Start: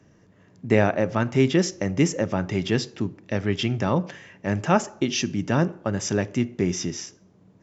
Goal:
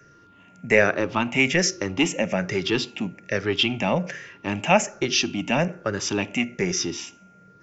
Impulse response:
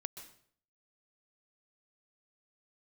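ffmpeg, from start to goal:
-filter_complex "[0:a]afftfilt=real='re*pow(10,10/40*sin(2*PI*(0.56*log(max(b,1)*sr/1024/100)/log(2)-(-1.2)*(pts-256)/sr)))':imag='im*pow(10,10/40*sin(2*PI*(0.56*log(max(b,1)*sr/1024/100)/log(2)-(-1.2)*(pts-256)/sr)))':win_size=1024:overlap=0.75,equalizer=f=100:t=o:w=0.67:g=-6,equalizer=f=2500:t=o:w=0.67:g=10,equalizer=f=6300:t=o:w=0.67:g=3,acrossover=split=370|3300[s0][s1][s2];[s0]asoftclip=type=tanh:threshold=0.0708[s3];[s3][s1][s2]amix=inputs=3:normalize=0,aeval=exprs='val(0)+0.00224*sin(2*PI*1400*n/s)':c=same"

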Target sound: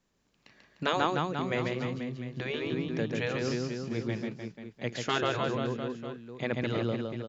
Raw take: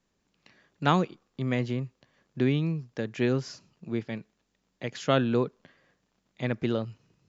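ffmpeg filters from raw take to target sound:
-af "aecho=1:1:140|301|486.2|699.1|943.9:0.631|0.398|0.251|0.158|0.1,afftfilt=real='re*lt(hypot(re,im),0.316)':imag='im*lt(hypot(re,im),0.316)':win_size=1024:overlap=0.75"

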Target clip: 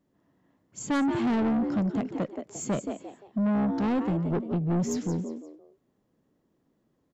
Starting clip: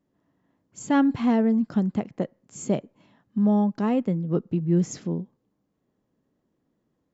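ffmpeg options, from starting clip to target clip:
-filter_complex "[0:a]asplit=4[s0][s1][s2][s3];[s1]adelay=174,afreqshift=66,volume=0.316[s4];[s2]adelay=348,afreqshift=132,volume=0.0944[s5];[s3]adelay=522,afreqshift=198,volume=0.0285[s6];[s0][s4][s5][s6]amix=inputs=4:normalize=0,asoftclip=type=tanh:threshold=0.0631,volume=1.19"

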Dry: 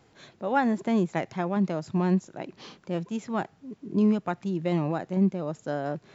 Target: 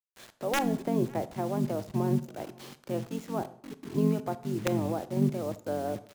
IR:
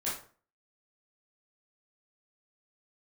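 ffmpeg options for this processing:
-filter_complex "[0:a]acrossover=split=260|840[s0][s1][s2];[s0]aeval=exprs='val(0)*sin(2*PI*47*n/s)':c=same[s3];[s1]aeval=exprs='(mod(10.6*val(0)+1,2)-1)/10.6':c=same[s4];[s2]acompressor=threshold=0.00316:ratio=6[s5];[s3][s4][s5]amix=inputs=3:normalize=0,acrusher=bits=7:mix=0:aa=0.000001,asplit=2[s6][s7];[s7]adelay=553.9,volume=0.0562,highshelf=f=4000:g=-12.5[s8];[s6][s8]amix=inputs=2:normalize=0,asplit=2[s9][s10];[1:a]atrim=start_sample=2205,asetrate=29988,aresample=44100[s11];[s10][s11]afir=irnorm=-1:irlink=0,volume=0.0944[s12];[s9][s12]amix=inputs=2:normalize=0"

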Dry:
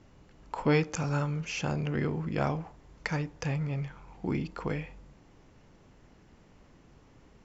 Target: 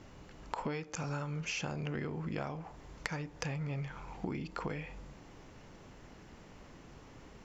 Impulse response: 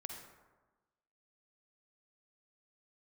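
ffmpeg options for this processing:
-af "lowshelf=f=370:g=-4,acompressor=threshold=0.00891:ratio=12,volume=2.11"

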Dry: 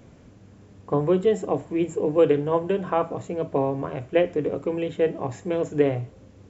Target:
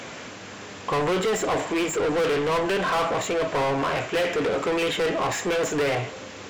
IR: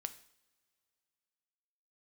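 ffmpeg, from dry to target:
-filter_complex "[0:a]tiltshelf=f=970:g=-6.5,asplit=2[s0][s1];[s1]highpass=f=720:p=1,volume=70.8,asoftclip=type=tanh:threshold=0.398[s2];[s0][s2]amix=inputs=2:normalize=0,lowpass=f=3400:p=1,volume=0.501,volume=0.398"

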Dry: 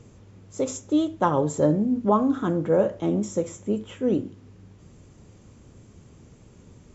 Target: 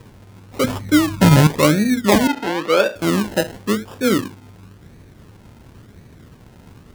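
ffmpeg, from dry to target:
-filter_complex "[0:a]asettb=1/sr,asplit=3[s0][s1][s2];[s0]atrim=end=0.644[s3];[s1]atrim=start=0.64:end=1.47,asetpts=PTS-STARTPTS,afade=t=in:d=0.004:c=qsin,afade=t=out:st=0.826:d=0.004:c=qsin,lowshelf=f=260:t=q:w=1.5:g=11[s4];[s2]atrim=start=1.466[s5];[s3][s4]acrossfade=d=0.004:c1=hsin:c2=qsin[s6];[s6][s5]acrossfade=d=0.004:c1=qsin:c2=hsin,acrusher=samples=30:mix=1:aa=0.000001:lfo=1:lforange=18:lforate=0.95,asettb=1/sr,asplit=3[s7][s8][s9];[s7]atrim=end=2.274[s10];[s8]atrim=start=2.27:end=2.96,asetpts=PTS-STARTPTS,afade=t=in:d=0.004:c=qsin,afade=t=out:st=0.686:d=0.004:c=qsin,acrossover=split=280 4500:gain=0.1 1 0.224[s11][s12][s13];[s11][s12][s13]amix=inputs=3:normalize=0[s14];[s9]atrim=start=2.956[s15];[s10][s14]acrossfade=d=0.004:c1=hsin:c2=qsin[s16];[s16][s15]acrossfade=d=0.004:c1=qsin:c2=hsin,volume=2"

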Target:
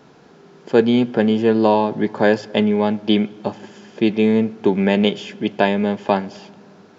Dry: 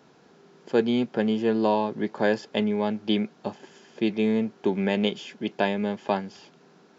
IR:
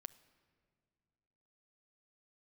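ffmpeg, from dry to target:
-filter_complex "[0:a]asplit=2[s0][s1];[1:a]atrim=start_sample=2205,lowshelf=f=83:g=10.5,highshelf=f=5400:g=-7[s2];[s1][s2]afir=irnorm=-1:irlink=0,volume=3.35[s3];[s0][s3]amix=inputs=2:normalize=0,volume=0.891"

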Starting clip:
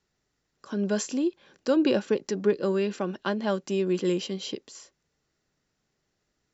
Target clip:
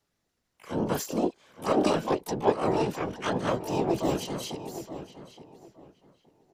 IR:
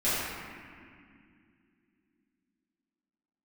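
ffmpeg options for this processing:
-filter_complex "[0:a]afftfilt=real='hypot(re,im)*cos(2*PI*random(0))':imag='hypot(re,im)*sin(2*PI*random(1))':win_size=512:overlap=0.75,asplit=4[s0][s1][s2][s3];[s1]asetrate=29433,aresample=44100,atempo=1.49831,volume=0.141[s4];[s2]asetrate=66075,aresample=44100,atempo=0.66742,volume=0.316[s5];[s3]asetrate=88200,aresample=44100,atempo=0.5,volume=0.631[s6];[s0][s4][s5][s6]amix=inputs=4:normalize=0,asplit=2[s7][s8];[s8]adelay=870,lowpass=f=2900:p=1,volume=0.251,asplit=2[s9][s10];[s10]adelay=870,lowpass=f=2900:p=1,volume=0.23,asplit=2[s11][s12];[s12]adelay=870,lowpass=f=2900:p=1,volume=0.23[s13];[s7][s9][s11][s13]amix=inputs=4:normalize=0,volume=1.41"

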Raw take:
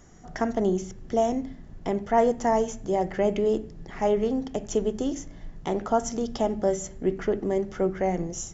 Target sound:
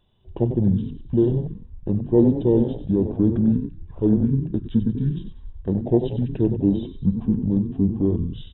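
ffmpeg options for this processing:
-filter_complex "[0:a]asplit=5[s0][s1][s2][s3][s4];[s1]adelay=94,afreqshift=64,volume=0.316[s5];[s2]adelay=188,afreqshift=128,volume=0.13[s6];[s3]adelay=282,afreqshift=192,volume=0.0531[s7];[s4]adelay=376,afreqshift=256,volume=0.0219[s8];[s0][s5][s6][s7][s8]amix=inputs=5:normalize=0,asetrate=22696,aresample=44100,atempo=1.94306,afwtdn=0.0447,volume=1.78"

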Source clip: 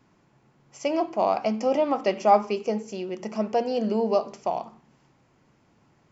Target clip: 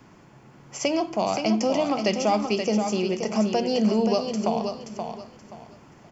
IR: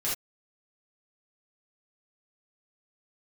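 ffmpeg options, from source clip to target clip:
-filter_complex "[0:a]acrossover=split=190|3000[s0][s1][s2];[s1]acompressor=threshold=0.0126:ratio=3[s3];[s0][s3][s2]amix=inputs=3:normalize=0,aeval=exprs='0.473*sin(PI/2*2.24*val(0)/0.473)':c=same,bandreject=f=3900:w=13,asplit=2[s4][s5];[s5]aecho=0:1:527|1054|1581:0.473|0.123|0.032[s6];[s4][s6]amix=inputs=2:normalize=0"

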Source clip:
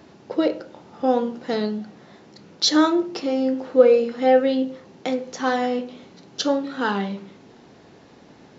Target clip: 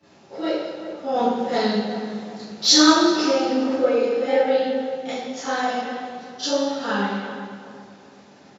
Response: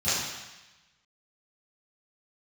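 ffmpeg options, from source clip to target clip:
-filter_complex "[0:a]highpass=f=380:p=1,asettb=1/sr,asplit=3[s0][s1][s2];[s0]atrim=end=1.134[s3];[s1]atrim=start=1.13:end=3.77,asetpts=PTS-STARTPTS,afade=t=in:d=0.004:c=qsin,afade=t=out:st=2.636:d=0.004:c=qsin,acontrast=35[s4];[s2]atrim=start=3.766[s5];[s3][s4]acrossfade=d=0.004:c1=hsin:c2=qsin[s6];[s6][s5]acrossfade=d=0.004:c1=qsin:c2=hsin,flanger=delay=6.5:depth=9.4:regen=-41:speed=1.8:shape=sinusoidal,asplit=2[s7][s8];[s8]adelay=379,lowpass=f=1600:p=1,volume=0.335,asplit=2[s9][s10];[s10]adelay=379,lowpass=f=1600:p=1,volume=0.39,asplit=2[s11][s12];[s12]adelay=379,lowpass=f=1600:p=1,volume=0.39,asplit=2[s13][s14];[s14]adelay=379,lowpass=f=1600:p=1,volume=0.39[s15];[s7][s9][s11][s13][s15]amix=inputs=5:normalize=0[s16];[1:a]atrim=start_sample=2205[s17];[s16][s17]afir=irnorm=-1:irlink=0,volume=0.398"

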